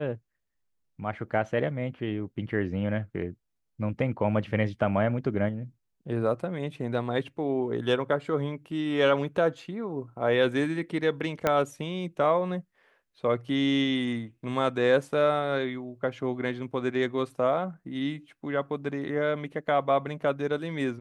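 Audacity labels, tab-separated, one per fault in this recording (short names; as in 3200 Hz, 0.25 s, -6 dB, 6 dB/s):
11.470000	11.470000	pop -10 dBFS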